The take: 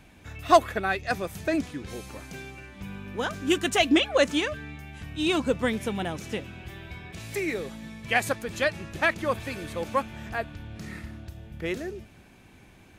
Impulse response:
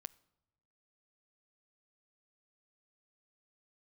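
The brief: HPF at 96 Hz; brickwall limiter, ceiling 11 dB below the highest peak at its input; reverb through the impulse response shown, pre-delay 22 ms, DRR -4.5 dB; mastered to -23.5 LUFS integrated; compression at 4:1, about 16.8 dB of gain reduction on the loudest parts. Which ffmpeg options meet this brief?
-filter_complex "[0:a]highpass=96,acompressor=threshold=-32dB:ratio=4,alimiter=level_in=4.5dB:limit=-24dB:level=0:latency=1,volume=-4.5dB,asplit=2[a][b];[1:a]atrim=start_sample=2205,adelay=22[c];[b][c]afir=irnorm=-1:irlink=0,volume=9.5dB[d];[a][d]amix=inputs=2:normalize=0,volume=10.5dB"

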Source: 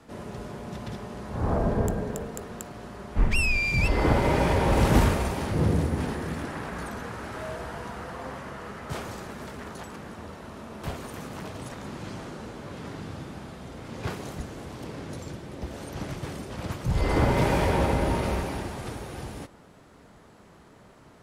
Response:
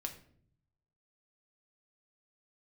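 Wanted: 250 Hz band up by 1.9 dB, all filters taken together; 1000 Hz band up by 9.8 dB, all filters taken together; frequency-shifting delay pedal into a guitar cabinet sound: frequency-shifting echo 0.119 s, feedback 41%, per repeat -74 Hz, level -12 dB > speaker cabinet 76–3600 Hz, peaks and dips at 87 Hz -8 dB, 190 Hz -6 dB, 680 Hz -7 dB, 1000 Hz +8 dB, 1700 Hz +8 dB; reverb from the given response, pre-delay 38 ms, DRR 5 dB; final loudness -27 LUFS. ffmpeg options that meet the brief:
-filter_complex "[0:a]equalizer=f=250:t=o:g=4.5,equalizer=f=1k:t=o:g=6.5,asplit=2[a][b];[1:a]atrim=start_sample=2205,adelay=38[c];[b][c]afir=irnorm=-1:irlink=0,volume=-3.5dB[d];[a][d]amix=inputs=2:normalize=0,asplit=5[e][f][g][h][i];[f]adelay=119,afreqshift=-74,volume=-12dB[j];[g]adelay=238,afreqshift=-148,volume=-19.7dB[k];[h]adelay=357,afreqshift=-222,volume=-27.5dB[l];[i]adelay=476,afreqshift=-296,volume=-35.2dB[m];[e][j][k][l][m]amix=inputs=5:normalize=0,highpass=76,equalizer=f=87:t=q:w=4:g=-8,equalizer=f=190:t=q:w=4:g=-6,equalizer=f=680:t=q:w=4:g=-7,equalizer=f=1k:t=q:w=4:g=8,equalizer=f=1.7k:t=q:w=4:g=8,lowpass=f=3.6k:w=0.5412,lowpass=f=3.6k:w=1.3066,volume=-2.5dB"

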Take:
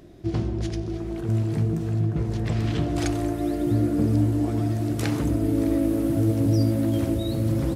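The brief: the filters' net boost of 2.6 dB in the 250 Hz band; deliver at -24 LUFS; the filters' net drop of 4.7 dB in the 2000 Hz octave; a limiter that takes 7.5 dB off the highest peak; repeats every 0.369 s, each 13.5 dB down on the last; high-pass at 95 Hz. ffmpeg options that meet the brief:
-af "highpass=95,equalizer=f=250:t=o:g=3.5,equalizer=f=2k:t=o:g=-6,alimiter=limit=-16.5dB:level=0:latency=1,aecho=1:1:369|738:0.211|0.0444,volume=1dB"

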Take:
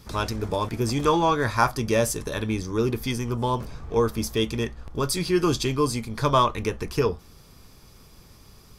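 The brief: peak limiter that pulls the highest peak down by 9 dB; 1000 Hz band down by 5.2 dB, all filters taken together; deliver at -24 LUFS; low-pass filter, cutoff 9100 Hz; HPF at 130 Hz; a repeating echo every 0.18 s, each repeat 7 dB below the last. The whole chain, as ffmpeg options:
-af "highpass=130,lowpass=9.1k,equalizer=f=1k:t=o:g=-6,alimiter=limit=-18dB:level=0:latency=1,aecho=1:1:180|360|540|720|900:0.447|0.201|0.0905|0.0407|0.0183,volume=4.5dB"

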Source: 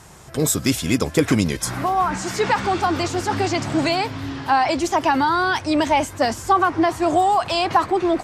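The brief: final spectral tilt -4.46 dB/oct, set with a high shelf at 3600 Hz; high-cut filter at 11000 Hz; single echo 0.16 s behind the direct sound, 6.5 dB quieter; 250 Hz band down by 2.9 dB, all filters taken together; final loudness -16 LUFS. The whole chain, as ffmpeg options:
-af "lowpass=11k,equalizer=f=250:t=o:g=-4,highshelf=f=3.6k:g=-3.5,aecho=1:1:160:0.473,volume=4.5dB"

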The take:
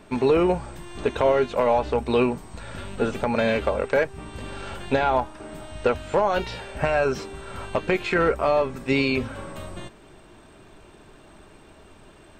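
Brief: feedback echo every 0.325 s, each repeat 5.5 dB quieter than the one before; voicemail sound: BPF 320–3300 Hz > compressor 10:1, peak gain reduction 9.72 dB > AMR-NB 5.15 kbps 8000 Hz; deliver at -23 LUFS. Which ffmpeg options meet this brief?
-af "highpass=320,lowpass=3.3k,aecho=1:1:325|650|975|1300|1625|1950|2275:0.531|0.281|0.149|0.079|0.0419|0.0222|0.0118,acompressor=threshold=-24dB:ratio=10,volume=8.5dB" -ar 8000 -c:a libopencore_amrnb -b:a 5150

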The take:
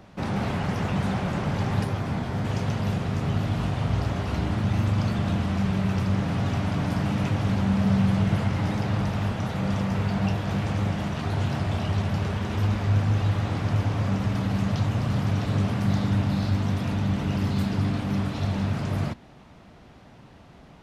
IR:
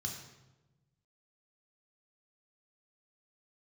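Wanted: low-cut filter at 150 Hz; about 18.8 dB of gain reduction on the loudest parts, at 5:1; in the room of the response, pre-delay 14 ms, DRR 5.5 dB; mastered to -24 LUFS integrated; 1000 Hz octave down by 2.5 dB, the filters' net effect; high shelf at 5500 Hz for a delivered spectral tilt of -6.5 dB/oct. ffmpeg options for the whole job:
-filter_complex "[0:a]highpass=150,equalizer=f=1k:t=o:g=-3.5,highshelf=f=5.5k:g=3.5,acompressor=threshold=-43dB:ratio=5,asplit=2[a][b];[1:a]atrim=start_sample=2205,adelay=14[c];[b][c]afir=irnorm=-1:irlink=0,volume=-5.5dB[d];[a][d]amix=inputs=2:normalize=0,volume=17dB"

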